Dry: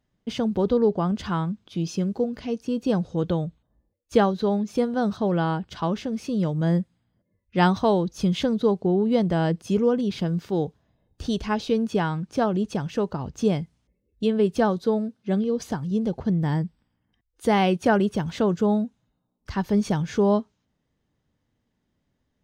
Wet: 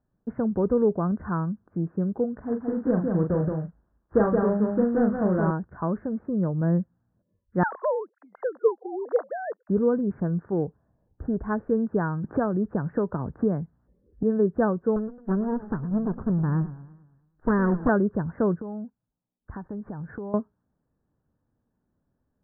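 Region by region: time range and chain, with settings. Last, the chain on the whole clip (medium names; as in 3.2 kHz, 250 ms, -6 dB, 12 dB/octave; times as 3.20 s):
2.43–5.51 s: CVSD coder 16 kbps + doubling 38 ms -5.5 dB + delay 173 ms -3.5 dB
7.63–9.69 s: formants replaced by sine waves + steep high-pass 460 Hz
12.24–14.23 s: treble shelf 4.6 kHz +10.5 dB + three bands compressed up and down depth 70%
14.96–17.89 s: comb filter that takes the minimum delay 0.68 ms + treble shelf 3.6 kHz -8.5 dB + modulated delay 108 ms, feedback 51%, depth 198 cents, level -16 dB
18.59–20.34 s: gate -39 dBFS, range -12 dB + compression, threshold -31 dBFS
whole clip: local Wiener filter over 9 samples; steep low-pass 1.7 kHz 72 dB/octave; dynamic bell 810 Hz, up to -6 dB, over -41 dBFS, Q 4.3; trim -1 dB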